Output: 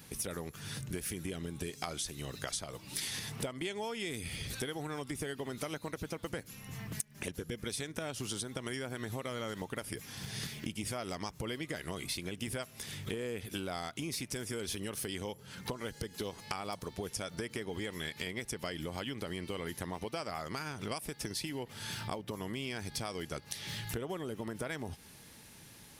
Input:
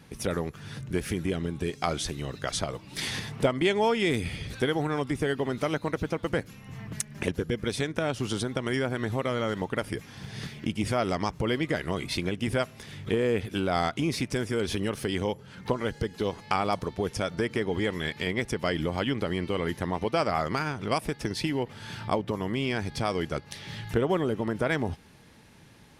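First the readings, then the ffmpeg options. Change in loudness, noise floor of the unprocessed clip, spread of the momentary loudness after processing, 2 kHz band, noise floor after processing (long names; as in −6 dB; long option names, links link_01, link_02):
−10.0 dB, −51 dBFS, 4 LU, −9.5 dB, −55 dBFS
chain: -af "aemphasis=mode=production:type=75kf,acompressor=threshold=-32dB:ratio=6,volume=-3.5dB"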